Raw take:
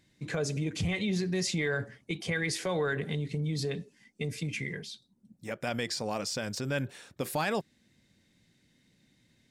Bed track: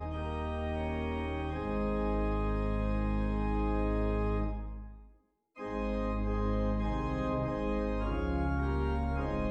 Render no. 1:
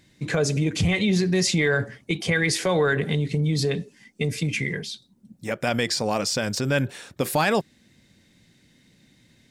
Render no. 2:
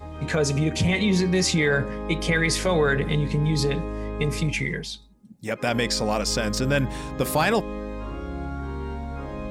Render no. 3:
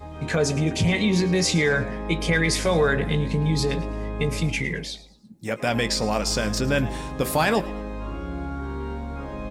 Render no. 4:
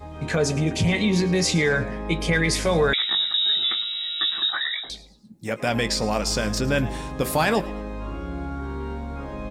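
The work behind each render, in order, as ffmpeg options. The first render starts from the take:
-af "volume=9dB"
-filter_complex "[1:a]volume=0dB[a];[0:a][a]amix=inputs=2:normalize=0"
-filter_complex "[0:a]asplit=2[a][b];[b]adelay=18,volume=-12.5dB[c];[a][c]amix=inputs=2:normalize=0,asplit=4[d][e][f][g];[e]adelay=109,afreqshift=120,volume=-18dB[h];[f]adelay=218,afreqshift=240,volume=-26.2dB[i];[g]adelay=327,afreqshift=360,volume=-34.4dB[j];[d][h][i][j]amix=inputs=4:normalize=0"
-filter_complex "[0:a]asettb=1/sr,asplit=3[a][b][c];[a]atrim=end=2.934[d];[b]atrim=start=2.93:end=4.9,asetpts=PTS-STARTPTS,afade=t=in:d=0.004:c=qsin,afade=t=out:st=1.966:d=0.004:c=qsin,lowpass=f=3.3k:t=q:w=0.5098,lowpass=f=3.3k:t=q:w=0.6013,lowpass=f=3.3k:t=q:w=0.9,lowpass=f=3.3k:t=q:w=2.563,afreqshift=-3900[e];[c]atrim=start=4.896[f];[d][e]acrossfade=d=0.004:c1=hsin:c2=qsin[g];[g][f]acrossfade=d=0.004:c1=qsin:c2=hsin"

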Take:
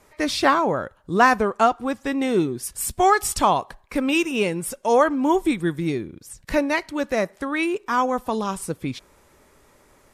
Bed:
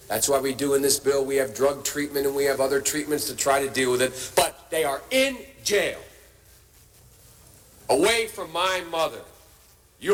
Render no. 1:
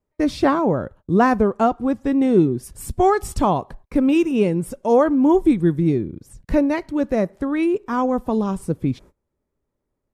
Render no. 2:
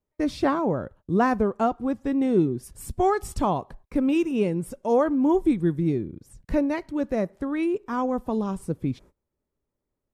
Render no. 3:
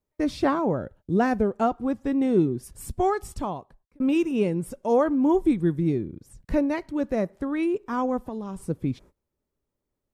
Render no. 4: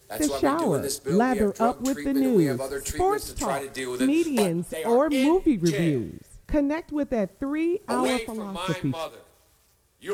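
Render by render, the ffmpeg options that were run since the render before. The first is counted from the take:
-af "agate=range=-26dB:threshold=-46dB:ratio=16:detection=peak,tiltshelf=f=700:g=9"
-af "volume=-5.5dB"
-filter_complex "[0:a]asettb=1/sr,asplit=3[a][b][c];[a]atrim=end=0.774[d];[b]atrim=start=0.77:end=1.62,asetpts=PTS-STARTPTS,afade=t=in:d=0.004:c=qsin,afade=t=out:st=0.846:d=0.004:c=qsin,equalizer=f=1.1k:w=4.7:g=-13[e];[c]atrim=start=1.616[f];[d][e]acrossfade=d=0.004:c1=hsin:c2=qsin[g];[g][f]acrossfade=d=0.004:c1=qsin:c2=hsin,asettb=1/sr,asplit=3[h][i][j];[h]atrim=end=8.174[k];[i]atrim=start=8.17:end=8.68,asetpts=PTS-STARTPTS,afade=t=in:d=0.004:c=qsin,afade=t=out:st=0.506:d=0.004:c=qsin,acompressor=threshold=-31dB:ratio=3:attack=3.2:release=140:knee=1:detection=peak[l];[j]atrim=start=8.676[m];[k][l]acrossfade=d=0.004:c1=hsin:c2=qsin[n];[n][m]acrossfade=d=0.004:c1=qsin:c2=hsin,asplit=2[o][p];[o]atrim=end=4,asetpts=PTS-STARTPTS,afade=t=out:st=2.88:d=1.12[q];[p]atrim=start=4,asetpts=PTS-STARTPTS,afade=t=in:d=0.004:c=hsin[r];[q][r]concat=n=2:v=0:a=1"
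-filter_complex "[1:a]volume=-8.5dB[a];[0:a][a]amix=inputs=2:normalize=0"

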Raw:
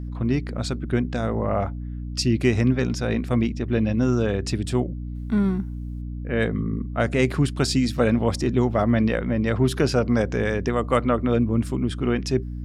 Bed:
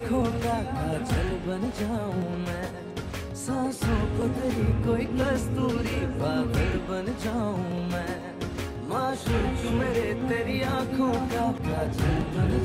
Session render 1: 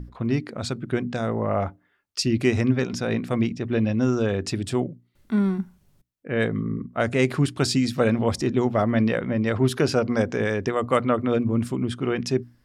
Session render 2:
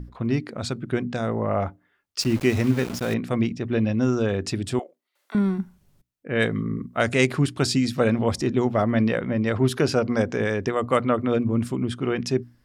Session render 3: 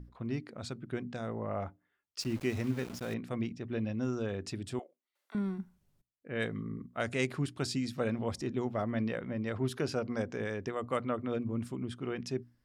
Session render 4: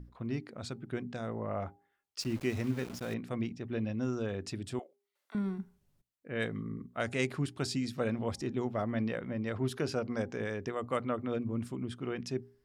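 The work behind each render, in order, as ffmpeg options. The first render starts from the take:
-af "bandreject=f=60:t=h:w=6,bandreject=f=120:t=h:w=6,bandreject=f=180:t=h:w=6,bandreject=f=240:t=h:w=6,bandreject=f=300:t=h:w=6"
-filter_complex "[0:a]asettb=1/sr,asplit=3[a][b][c];[a]atrim=end=2.194[d];[b]atrim=start=2.19:end=3.14,asetpts=PTS-STARTPTS,afade=t=in:d=0.004:c=qsin,afade=t=out:st=0.946:d=0.004:c=qsin,aeval=exprs='val(0)*gte(abs(val(0)),0.0266)':c=same[e];[c]atrim=start=3.136[f];[d][e]acrossfade=d=0.004:c1=hsin:c2=qsin[g];[g][f]acrossfade=d=0.004:c1=qsin:c2=hsin,asettb=1/sr,asplit=3[h][i][j];[h]atrim=end=4.794[k];[i]atrim=start=4.79:end=5.35,asetpts=PTS-STARTPTS,afade=t=in:d=0.004:c=qsin,afade=t=out:st=0.556:d=0.004:c=qsin,highpass=f=560:w=0.5412,highpass=f=560:w=1.3066[l];[j]atrim=start=5.346[m];[k][l]acrossfade=d=0.004:c1=hsin:c2=qsin[n];[n][m]acrossfade=d=0.004:c1=qsin:c2=hsin,asettb=1/sr,asplit=3[o][p][q];[o]atrim=end=6.354[r];[p]atrim=start=6.35:end=7.27,asetpts=PTS-STARTPTS,afade=t=in:d=0.004:c=qsin,afade=t=out:st=0.916:d=0.004:c=qsin,highshelf=f=2k:g=8[s];[q]atrim=start=7.266[t];[r][s]acrossfade=d=0.004:c1=hsin:c2=qsin[u];[u][t]acrossfade=d=0.004:c1=qsin:c2=hsin"
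-af "volume=-12dB"
-af "bandreject=f=402.6:t=h:w=4,bandreject=f=805.2:t=h:w=4"

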